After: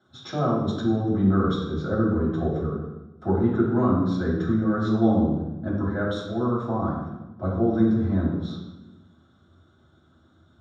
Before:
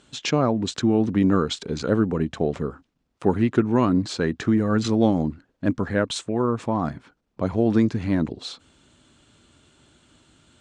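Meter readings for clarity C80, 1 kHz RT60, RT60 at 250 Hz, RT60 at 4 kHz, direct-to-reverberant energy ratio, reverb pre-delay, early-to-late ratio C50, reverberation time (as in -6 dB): 4.5 dB, 0.95 s, 1.5 s, 0.85 s, -11.5 dB, 3 ms, 1.5 dB, 1.1 s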